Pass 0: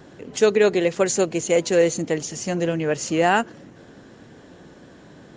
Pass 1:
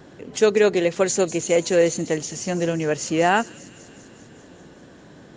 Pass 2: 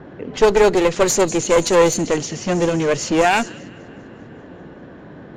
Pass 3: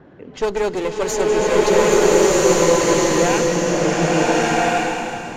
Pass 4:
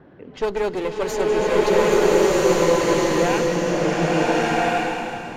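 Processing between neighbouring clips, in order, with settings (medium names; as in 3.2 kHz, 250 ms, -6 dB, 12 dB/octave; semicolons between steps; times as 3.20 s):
feedback echo behind a high-pass 197 ms, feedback 70%, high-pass 4.5 kHz, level -11 dB
one-sided clip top -25.5 dBFS; level-controlled noise filter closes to 1.7 kHz, open at -19.5 dBFS; trim +7.5 dB
swelling reverb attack 1390 ms, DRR -9 dB; trim -7.5 dB
peaking EQ 6.8 kHz -7.5 dB 0.69 oct; trim -2.5 dB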